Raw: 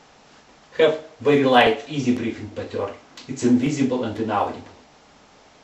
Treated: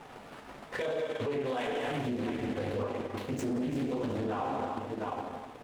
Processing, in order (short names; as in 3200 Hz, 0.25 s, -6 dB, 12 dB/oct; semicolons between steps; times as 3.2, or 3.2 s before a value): median filter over 9 samples; non-linear reverb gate 0.49 s falling, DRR 2 dB; compressor, threshold -16 dBFS, peak gain reduction 8.5 dB; feedback echo 0.709 s, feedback 18%, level -14 dB; transient shaper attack +9 dB, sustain -11 dB; flange 1 Hz, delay 5.5 ms, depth 9.9 ms, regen -43%; limiter -31 dBFS, peak gain reduction 26 dB; Doppler distortion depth 0.34 ms; gain +5.5 dB